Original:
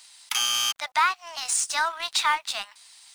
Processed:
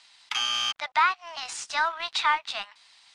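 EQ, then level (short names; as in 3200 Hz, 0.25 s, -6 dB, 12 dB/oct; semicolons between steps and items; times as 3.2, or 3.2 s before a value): LPF 3900 Hz 12 dB/oct; 0.0 dB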